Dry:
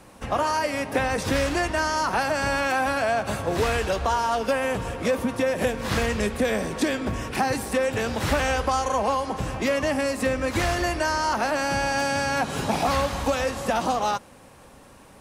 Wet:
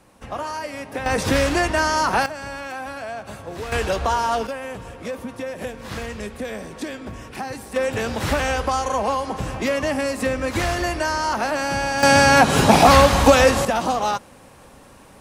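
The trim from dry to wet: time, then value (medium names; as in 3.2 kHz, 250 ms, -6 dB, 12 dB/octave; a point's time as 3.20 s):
-5 dB
from 1.06 s +4.5 dB
from 2.26 s -8 dB
from 3.72 s +2.5 dB
from 4.47 s -6.5 dB
from 7.76 s +1.5 dB
from 12.03 s +11.5 dB
from 13.65 s +2.5 dB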